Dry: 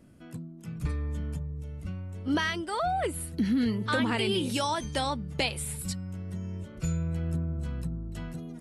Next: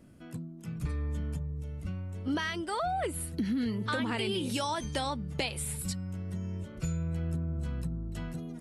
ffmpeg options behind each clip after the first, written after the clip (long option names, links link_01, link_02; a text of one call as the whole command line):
ffmpeg -i in.wav -af "acompressor=threshold=-29dB:ratio=3" out.wav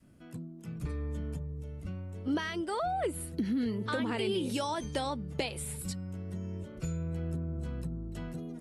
ffmpeg -i in.wav -af "adynamicequalizer=threshold=0.00447:dfrequency=410:dqfactor=0.86:tfrequency=410:tqfactor=0.86:attack=5:release=100:ratio=0.375:range=3:mode=boostabove:tftype=bell,volume=-3.5dB" out.wav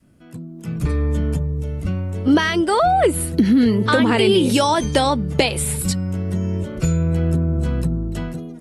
ffmpeg -i in.wav -af "dynaudnorm=framelen=240:gausssize=5:maxgain=11.5dB,volume=5dB" out.wav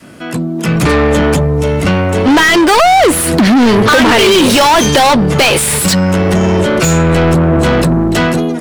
ffmpeg -i in.wav -filter_complex "[0:a]asplit=2[link_01][link_02];[link_02]highpass=frequency=720:poles=1,volume=35dB,asoftclip=type=tanh:threshold=-1dB[link_03];[link_01][link_03]amix=inputs=2:normalize=0,lowpass=frequency=4600:poles=1,volume=-6dB" out.wav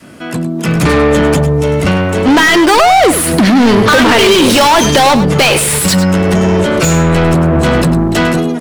ffmpeg -i in.wav -af "aecho=1:1:102:0.266" out.wav